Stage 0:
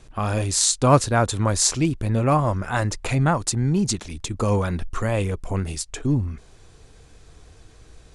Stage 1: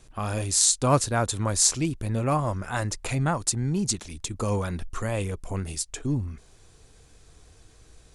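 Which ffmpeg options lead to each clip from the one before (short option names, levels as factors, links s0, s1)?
-af "highshelf=f=6300:g=9,volume=0.531"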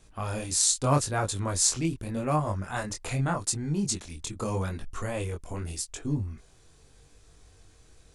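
-af "flanger=delay=19.5:depth=4.9:speed=0.82"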